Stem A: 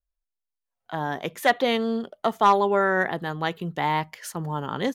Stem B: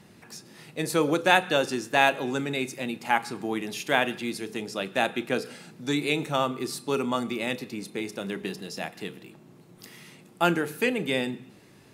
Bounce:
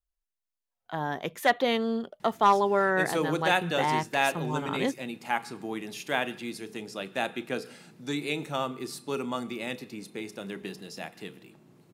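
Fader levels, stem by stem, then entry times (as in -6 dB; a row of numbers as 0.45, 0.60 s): -3.0, -5.0 dB; 0.00, 2.20 s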